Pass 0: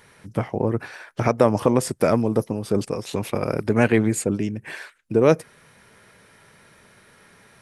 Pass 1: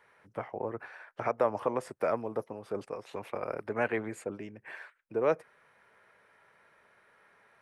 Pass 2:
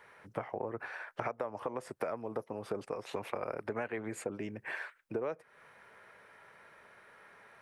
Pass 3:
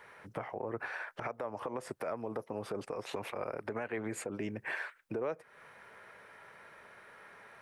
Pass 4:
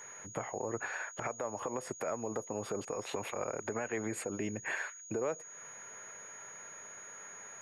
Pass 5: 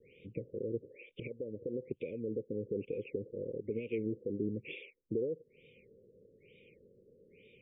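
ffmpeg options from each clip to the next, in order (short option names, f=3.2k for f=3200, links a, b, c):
-filter_complex "[0:a]acrossover=split=450 2400:gain=0.178 1 0.158[a][b][c];[a][b][c]amix=inputs=3:normalize=0,volume=-7dB"
-af "acompressor=threshold=-38dB:ratio=20,volume=5.5dB"
-af "alimiter=level_in=6dB:limit=-24dB:level=0:latency=1:release=70,volume=-6dB,volume=3dB"
-af "aeval=exprs='val(0)+0.00355*sin(2*PI*6700*n/s)':c=same,volume=1dB"
-af "asuperstop=centerf=1100:order=20:qfactor=0.61,afftfilt=real='re*lt(b*sr/1024,680*pow(3800/680,0.5+0.5*sin(2*PI*1.1*pts/sr)))':imag='im*lt(b*sr/1024,680*pow(3800/680,0.5+0.5*sin(2*PI*1.1*pts/sr)))':win_size=1024:overlap=0.75,volume=2dB"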